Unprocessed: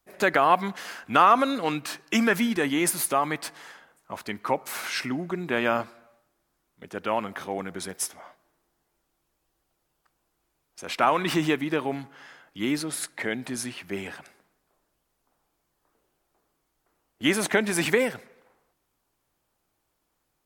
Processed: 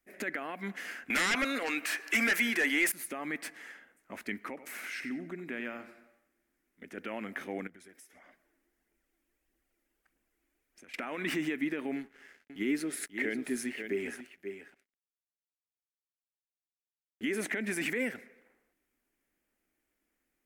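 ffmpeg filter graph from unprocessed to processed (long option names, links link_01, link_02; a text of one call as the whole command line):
ffmpeg -i in.wav -filter_complex "[0:a]asettb=1/sr,asplit=3[link_01][link_02][link_03];[link_01]atrim=end=1.104[link_04];[link_02]atrim=start=1.1:end=2.92,asetpts=PTS-STARTPTS,afade=type=in:duration=0.004:curve=qsin,afade=type=out:start_time=1.816:duration=0.004:curve=qsin,highpass=590,aeval=exprs='0.531*sin(PI/2*6.31*val(0)/0.531)':channel_layout=same[link_05];[link_03]atrim=start=2.916[link_06];[link_04][link_05]acrossfade=duration=0.004:curve1=hsin:curve2=qsin[link_07];[link_07][link_06]acrossfade=duration=0.004:curve1=qsin:curve2=hsin,asettb=1/sr,asplit=3[link_08][link_09][link_10];[link_08]atrim=end=4.484[link_11];[link_09]atrim=start=4.48:end=6.98,asetpts=PTS-STARTPTS,afade=type=in:duration=0.004:curve=qsin,afade=type=out:start_time=2.496:duration=0.004:curve=qsin,acompressor=threshold=-38dB:ratio=2:attack=3.2:release=140:knee=1:detection=peak,aecho=1:1:92|184|276:0.251|0.0678|0.0183,atrim=end_sample=110250[link_12];[link_10]atrim=start=6.976[link_13];[link_11][link_12]acrossfade=duration=0.004:curve1=hsin:curve2=qsin[link_14];[link_14][link_13]acrossfade=duration=0.004:curve1=qsin:curve2=hsin,asettb=1/sr,asplit=3[link_15][link_16][link_17];[link_15]atrim=end=7.674[link_18];[link_16]atrim=start=7.67:end=10.94,asetpts=PTS-STARTPTS,afade=type=in:duration=0.004:curve=qsin,afade=type=out:start_time=3.266:duration=0.004:curve=qsin,aphaser=in_gain=1:out_gain=1:delay=3.8:decay=0.42:speed=1.6:type=triangular,acompressor=threshold=-47dB:ratio=8:attack=3.2:release=140:knee=1:detection=peak[link_19];[link_17]atrim=start=10.936[link_20];[link_18][link_19]acrossfade=duration=0.004:curve1=hsin:curve2=qsin[link_21];[link_21][link_20]acrossfade=duration=0.004:curve1=qsin:curve2=hsin,asettb=1/sr,asplit=3[link_22][link_23][link_24];[link_22]atrim=end=11.964[link_25];[link_23]atrim=start=11.96:end=17.41,asetpts=PTS-STARTPTS,afade=type=in:duration=0.004:curve=qsin,afade=type=out:start_time=5.446:duration=0.004:curve=qsin,equalizer=frequency=400:width=6.6:gain=11.5,aeval=exprs='sgn(val(0))*max(abs(val(0))-0.00282,0)':channel_layout=same,aecho=1:1:536:0.266,atrim=end_sample=240345[link_26];[link_24]atrim=start=17.406[link_27];[link_25][link_26]acrossfade=duration=0.004:curve1=hsin:curve2=qsin[link_28];[link_28][link_27]acrossfade=duration=0.004:curve1=qsin:curve2=hsin,acompressor=threshold=-23dB:ratio=5,alimiter=limit=-20dB:level=0:latency=1:release=20,equalizer=frequency=125:width_type=o:width=1:gain=-12,equalizer=frequency=250:width_type=o:width=1:gain=9,equalizer=frequency=1000:width_type=o:width=1:gain=-10,equalizer=frequency=2000:width_type=o:width=1:gain=11,equalizer=frequency=4000:width_type=o:width=1:gain=-7,volume=-6dB" out.wav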